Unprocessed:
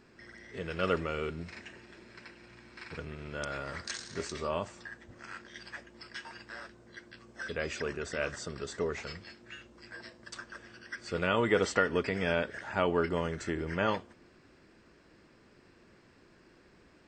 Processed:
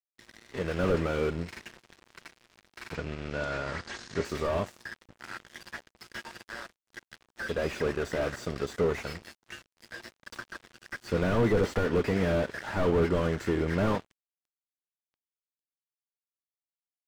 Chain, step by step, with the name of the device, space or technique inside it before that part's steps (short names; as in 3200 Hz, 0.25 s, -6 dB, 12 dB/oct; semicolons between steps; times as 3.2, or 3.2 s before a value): early transistor amplifier (crossover distortion -48.5 dBFS; slew limiter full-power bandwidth 13 Hz); 2.95–4.25 LPF 7800 Hz 24 dB/oct; gain +9 dB